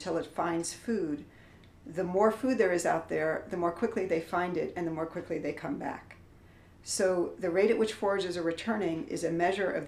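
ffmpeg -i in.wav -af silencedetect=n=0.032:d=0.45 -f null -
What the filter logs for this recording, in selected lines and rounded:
silence_start: 1.15
silence_end: 1.97 | silence_duration: 0.83
silence_start: 5.95
silence_end: 6.90 | silence_duration: 0.94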